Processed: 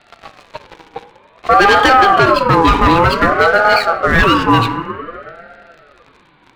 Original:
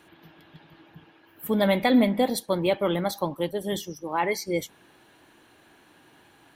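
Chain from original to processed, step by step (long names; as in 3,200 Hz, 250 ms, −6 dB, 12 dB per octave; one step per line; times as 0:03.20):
Butterworth low-pass 3,700 Hz 72 dB per octave
hum removal 103.6 Hz, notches 7
leveller curve on the samples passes 3
convolution reverb RT60 2.7 s, pre-delay 5 ms, DRR 11.5 dB
boost into a limiter +14 dB
ring modulator whose carrier an LFO sweeps 840 Hz, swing 25%, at 0.54 Hz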